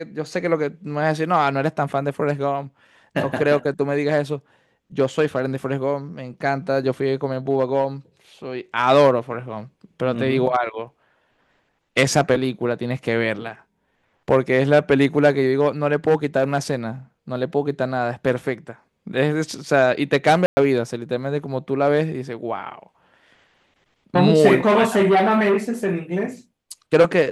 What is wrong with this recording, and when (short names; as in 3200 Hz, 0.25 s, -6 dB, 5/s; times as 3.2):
20.46–20.57 gap 0.11 s